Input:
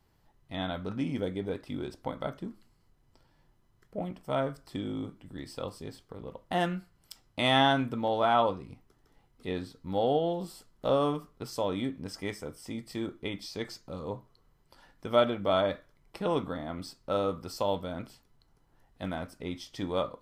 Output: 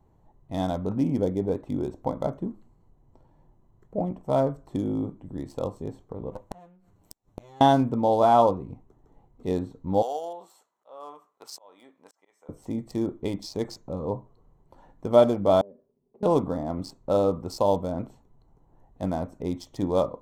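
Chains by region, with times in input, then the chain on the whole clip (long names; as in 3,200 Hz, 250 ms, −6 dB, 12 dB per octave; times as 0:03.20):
0:06.32–0:07.61: lower of the sound and its delayed copy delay 9.9 ms + high-shelf EQ 2,300 Hz +7.5 dB + gate with flip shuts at −27 dBFS, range −30 dB
0:10.02–0:12.49: high-pass filter 1,100 Hz + volume swells 581 ms
0:15.61–0:16.23: downward compressor 2.5 to 1, threshold −46 dBFS + pair of resonant band-passes 310 Hz, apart 0.7 octaves
whole clip: adaptive Wiener filter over 9 samples; flat-topped bell 2,100 Hz −12.5 dB; level +7.5 dB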